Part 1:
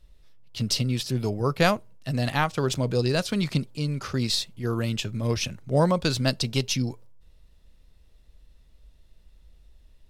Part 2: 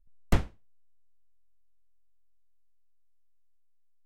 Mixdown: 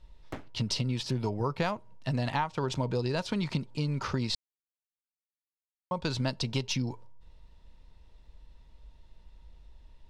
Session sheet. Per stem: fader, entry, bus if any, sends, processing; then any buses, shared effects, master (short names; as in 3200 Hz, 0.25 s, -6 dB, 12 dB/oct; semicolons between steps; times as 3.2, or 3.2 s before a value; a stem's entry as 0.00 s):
+1.0 dB, 0.00 s, muted 4.35–5.91, no send, Bessel low-pass 5100 Hz, order 2; bell 930 Hz +13 dB 0.21 oct; compressor 6:1, threshold -28 dBFS, peak gain reduction 13.5 dB
-7.0 dB, 0.00 s, no send, steep high-pass 160 Hz; high shelf 4800 Hz -8.5 dB; ring modulator 93 Hz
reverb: off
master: dry